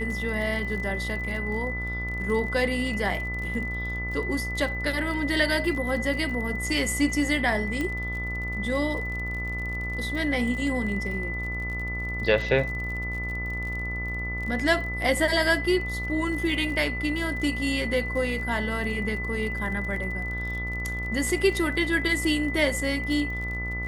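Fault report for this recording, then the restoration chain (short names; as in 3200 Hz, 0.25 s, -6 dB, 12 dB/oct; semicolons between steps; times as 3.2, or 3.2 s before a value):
buzz 60 Hz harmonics 24 -33 dBFS
crackle 42/s -34 dBFS
tone 2000 Hz -31 dBFS
7.81 pop -17 dBFS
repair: de-click; de-hum 60 Hz, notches 24; notch 2000 Hz, Q 30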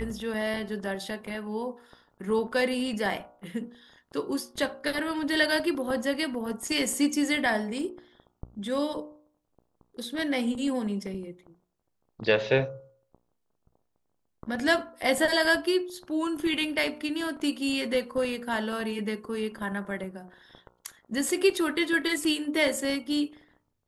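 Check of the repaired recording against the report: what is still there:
7.81 pop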